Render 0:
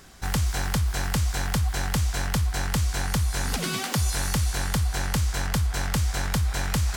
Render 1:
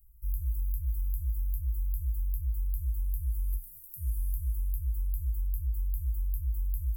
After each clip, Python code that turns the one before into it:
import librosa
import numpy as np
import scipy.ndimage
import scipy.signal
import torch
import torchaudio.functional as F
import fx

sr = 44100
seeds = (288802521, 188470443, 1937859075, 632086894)

y = scipy.signal.sosfilt(scipy.signal.cheby2(4, 80, [310.0, 3600.0], 'bandstop', fs=sr, output='sos'), x)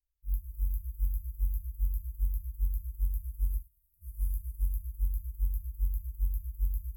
y = fx.echo_thinned(x, sr, ms=104, feedback_pct=79, hz=420.0, wet_db=-6)
y = fx.rev_freeverb(y, sr, rt60_s=1.4, hf_ratio=0.35, predelay_ms=20, drr_db=0.5)
y = fx.upward_expand(y, sr, threshold_db=-40.0, expansion=2.5)
y = F.gain(torch.from_numpy(y), -2.0).numpy()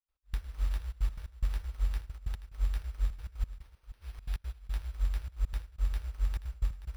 y = fx.step_gate(x, sr, bpm=179, pattern='.x..xxxxxxx.x', floor_db=-24.0, edge_ms=4.5)
y = y + 10.0 ** (-14.5 / 20.0) * np.pad(y, (int(480 * sr / 1000.0), 0))[:len(y)]
y = np.repeat(y[::6], 6)[:len(y)]